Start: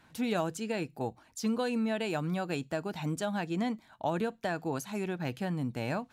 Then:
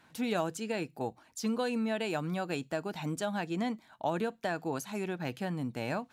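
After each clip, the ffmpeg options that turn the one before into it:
-af "lowshelf=f=87:g=-11.5"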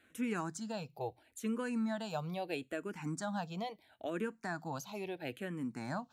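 -filter_complex "[0:a]asplit=2[s0][s1];[s1]afreqshift=-0.75[s2];[s0][s2]amix=inputs=2:normalize=1,volume=0.794"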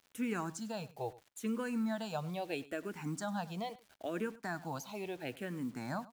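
-filter_complex "[0:a]acrusher=bits=9:mix=0:aa=0.000001,asplit=2[s0][s1];[s1]adelay=99.13,volume=0.112,highshelf=f=4000:g=-2.23[s2];[s0][s2]amix=inputs=2:normalize=0"

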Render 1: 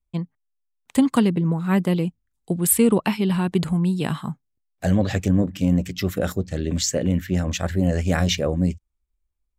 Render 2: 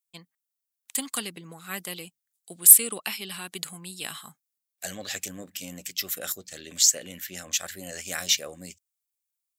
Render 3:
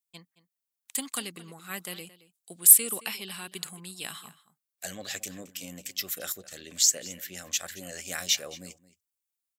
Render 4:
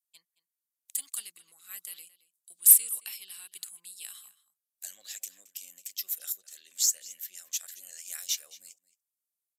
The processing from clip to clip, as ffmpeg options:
-af "aderivative,bandreject=f=950:w=8.1,acontrast=85"
-filter_complex "[0:a]asplit=2[s0][s1];[s1]adelay=221.6,volume=0.141,highshelf=f=4000:g=-4.99[s2];[s0][s2]amix=inputs=2:normalize=0,volume=0.75"
-af "aeval=exprs='(tanh(3.16*val(0)+0.35)-tanh(0.35))/3.16':c=same,aresample=32000,aresample=44100,aderivative,volume=0.891"

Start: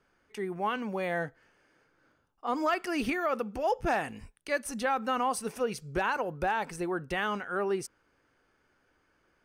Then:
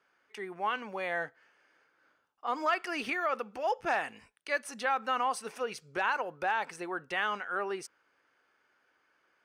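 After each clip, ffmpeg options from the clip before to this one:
-af "highpass=f=1200:p=1,aemphasis=mode=reproduction:type=50kf,volume=1.58"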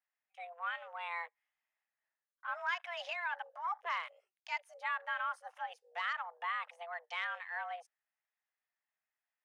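-af "afwtdn=0.00631,afreqshift=340,volume=0.447"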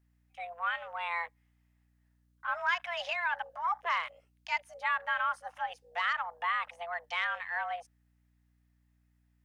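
-af "aeval=exprs='val(0)+0.000178*(sin(2*PI*60*n/s)+sin(2*PI*2*60*n/s)/2+sin(2*PI*3*60*n/s)/3+sin(2*PI*4*60*n/s)/4+sin(2*PI*5*60*n/s)/5)':c=same,volume=2"

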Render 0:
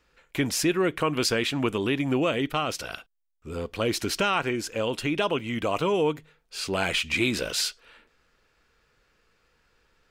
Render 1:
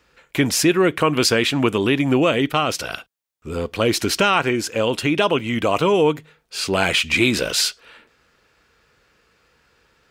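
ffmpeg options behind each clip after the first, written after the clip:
-af "highpass=58,volume=2.37"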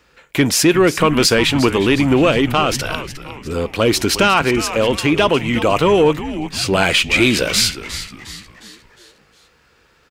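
-filter_complex "[0:a]asplit=6[s0][s1][s2][s3][s4][s5];[s1]adelay=358,afreqshift=-140,volume=0.224[s6];[s2]adelay=716,afreqshift=-280,volume=0.105[s7];[s3]adelay=1074,afreqshift=-420,volume=0.0495[s8];[s4]adelay=1432,afreqshift=-560,volume=0.0232[s9];[s5]adelay=1790,afreqshift=-700,volume=0.011[s10];[s0][s6][s7][s8][s9][s10]amix=inputs=6:normalize=0,acontrast=35,volume=0.891"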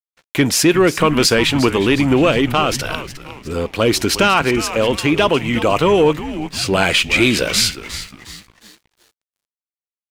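-af "aeval=exprs='sgn(val(0))*max(abs(val(0))-0.00708,0)':c=same"

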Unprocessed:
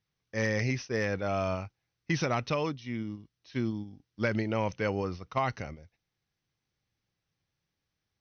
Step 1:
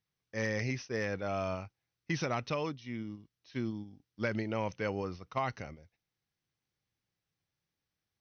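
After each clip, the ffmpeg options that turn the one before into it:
-af "lowshelf=f=66:g=-5.5,volume=0.631"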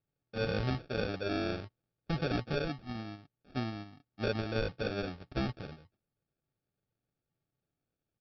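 -af "aecho=1:1:7.2:0.39,aresample=11025,acrusher=samples=11:mix=1:aa=0.000001,aresample=44100"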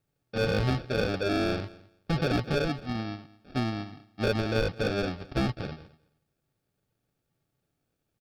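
-filter_complex "[0:a]asplit=2[s0][s1];[s1]aeval=exprs='0.02*(abs(mod(val(0)/0.02+3,4)-2)-1)':c=same,volume=0.355[s2];[s0][s2]amix=inputs=2:normalize=0,aecho=1:1:213|426:0.0891|0.0143,volume=1.88"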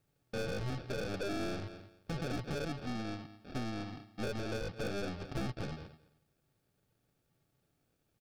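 -af "acompressor=threshold=0.02:ratio=8,aeval=exprs='(tanh(70.8*val(0)+0.5)-tanh(0.5))/70.8':c=same,volume=1.58"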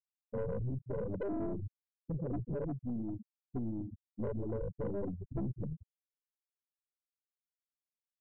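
-af "aemphasis=mode=reproduction:type=cd,afftfilt=real='re*gte(hypot(re,im),0.0501)':imag='im*gte(hypot(re,im),0.0501)':win_size=1024:overlap=0.75,asoftclip=type=tanh:threshold=0.0178,volume=1.68"

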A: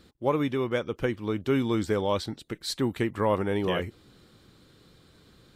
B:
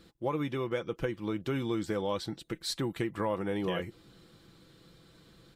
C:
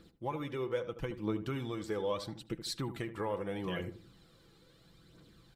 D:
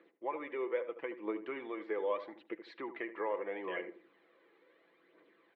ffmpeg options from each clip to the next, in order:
-af "aecho=1:1:6:0.43,acompressor=threshold=0.0398:ratio=2.5,volume=0.794"
-filter_complex "[0:a]aphaser=in_gain=1:out_gain=1:delay=2.5:decay=0.45:speed=0.77:type=triangular,asplit=2[s0][s1];[s1]adelay=76,lowpass=f=1200:p=1,volume=0.316,asplit=2[s2][s3];[s3]adelay=76,lowpass=f=1200:p=1,volume=0.33,asplit=2[s4][s5];[s5]adelay=76,lowpass=f=1200:p=1,volume=0.33,asplit=2[s6][s7];[s7]adelay=76,lowpass=f=1200:p=1,volume=0.33[s8];[s0][s2][s4][s6][s8]amix=inputs=5:normalize=0,volume=0.562"
-af "highpass=f=380:w=0.5412,highpass=f=380:w=1.3066,equalizer=f=490:t=q:w=4:g=-3,equalizer=f=790:t=q:w=4:g=-5,equalizer=f=1400:t=q:w=4:g=-9,equalizer=f=2000:t=q:w=4:g=5,lowpass=f=2200:w=0.5412,lowpass=f=2200:w=1.3066,volume=1.5"

